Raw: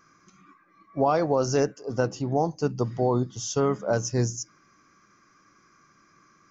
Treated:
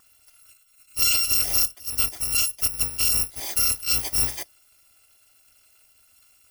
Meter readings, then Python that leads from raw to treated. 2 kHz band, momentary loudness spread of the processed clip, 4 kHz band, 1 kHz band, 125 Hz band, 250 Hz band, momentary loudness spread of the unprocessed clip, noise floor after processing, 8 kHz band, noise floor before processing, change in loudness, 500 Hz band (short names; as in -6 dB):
+6.0 dB, 6 LU, +15.5 dB, -13.0 dB, -11.5 dB, -17.5 dB, 5 LU, -60 dBFS, n/a, -61 dBFS, +5.5 dB, -21.5 dB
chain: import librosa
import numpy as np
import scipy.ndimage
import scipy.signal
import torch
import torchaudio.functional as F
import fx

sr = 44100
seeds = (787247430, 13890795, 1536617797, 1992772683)

y = fx.bit_reversed(x, sr, seeds[0], block=256)
y = F.gain(torch.from_numpy(y), 1.5).numpy()